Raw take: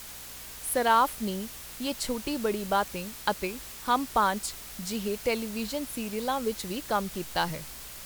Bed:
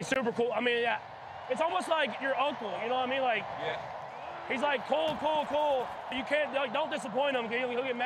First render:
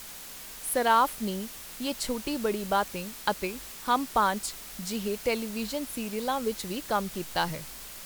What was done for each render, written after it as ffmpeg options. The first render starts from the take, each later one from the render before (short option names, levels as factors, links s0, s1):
-af "bandreject=f=60:t=h:w=4,bandreject=f=120:t=h:w=4"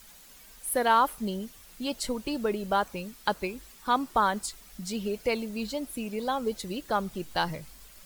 -af "afftdn=nr=11:nf=-43"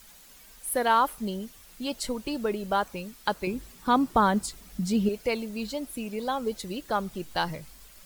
-filter_complex "[0:a]asettb=1/sr,asplit=3[s0][s1][s2];[s0]atrim=end=3.474[s3];[s1]atrim=start=3.47:end=5.09,asetpts=PTS-STARTPTS,afade=t=in:d=0.004:c=qsin,afade=t=out:st=1.616:d=0.004:c=qsin,equalizer=f=130:w=0.35:g=11[s4];[s2]atrim=start=5.086[s5];[s3][s4]acrossfade=d=0.004:c1=hsin:c2=qsin[s6];[s6][s5]acrossfade=d=0.004:c1=qsin:c2=hsin"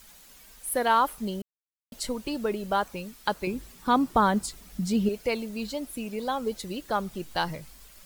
-filter_complex "[0:a]asplit=3[s0][s1][s2];[s0]atrim=end=1.42,asetpts=PTS-STARTPTS,afade=t=out:st=1.416:d=0.004:c=hsin[s3];[s1]atrim=start=1.42:end=1.92,asetpts=PTS-STARTPTS,volume=0[s4];[s2]atrim=start=1.92,asetpts=PTS-STARTPTS,afade=t=in:d=0.004:c=hsin[s5];[s3][s4][s5]concat=n=3:v=0:a=1"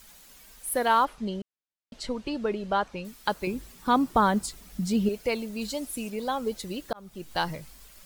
-filter_complex "[0:a]asettb=1/sr,asplit=3[s0][s1][s2];[s0]atrim=end=1.054[s3];[s1]atrim=start=1.05:end=3.05,asetpts=PTS-STARTPTS,afade=t=in:d=0.004:c=qsin,afade=t=out:st=1.996:d=0.004:c=qsin,lowpass=4800[s4];[s2]atrim=start=3.046[s5];[s3][s4]acrossfade=d=0.004:c1=hsin:c2=qsin[s6];[s6][s5]acrossfade=d=0.004:c1=qsin:c2=hsin,asettb=1/sr,asplit=3[s7][s8][s9];[s7]atrim=end=5.614[s10];[s8]atrim=start=5.61:end=6.1,asetpts=PTS-STARTPTS,afade=t=in:d=0.004:c=qsin,afade=t=out:st=0.486:d=0.004:c=qsin,equalizer=f=8300:t=o:w=1.6:g=6.5[s11];[s9]atrim=start=6.096[s12];[s10][s11]acrossfade=d=0.004:c1=hsin:c2=qsin[s13];[s13][s12]acrossfade=d=0.004:c1=qsin:c2=hsin,asplit=2[s14][s15];[s14]atrim=end=6.93,asetpts=PTS-STARTPTS,afade=t=out:st=6.926:d=0.004:c=hsin[s16];[s15]atrim=start=6.93,asetpts=PTS-STARTPTS,afade=t=in:d=0.44[s17];[s16][s17]concat=n=2:v=0:a=1"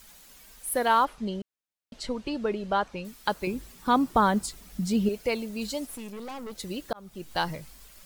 -filter_complex "[0:a]asettb=1/sr,asplit=3[s0][s1][s2];[s0]atrim=end=5.864[s3];[s1]atrim=start=5.86:end=6.58,asetpts=PTS-STARTPTS,afade=t=in:d=0.004:c=qsin,afade=t=out:st=0.716:d=0.004:c=qsin,aeval=exprs='(tanh(63.1*val(0)+0.55)-tanh(0.55))/63.1':c=same[s4];[s2]atrim=start=6.576[s5];[s3][s4]acrossfade=d=0.004:c1=hsin:c2=qsin[s6];[s6][s5]acrossfade=d=0.004:c1=qsin:c2=hsin"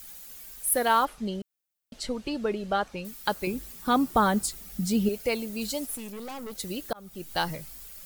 -af "highshelf=f=9500:g=12,bandreject=f=990:w=12"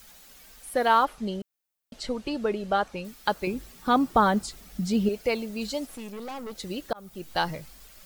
-filter_complex "[0:a]acrossover=split=6700[s0][s1];[s1]acompressor=threshold=0.00282:ratio=4:attack=1:release=60[s2];[s0][s2]amix=inputs=2:normalize=0,equalizer=f=770:t=o:w=2.1:g=2.5"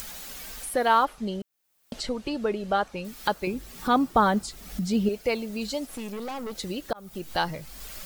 -af "acompressor=mode=upward:threshold=0.0398:ratio=2.5"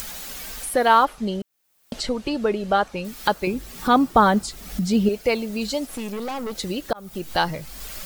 -af "volume=1.78"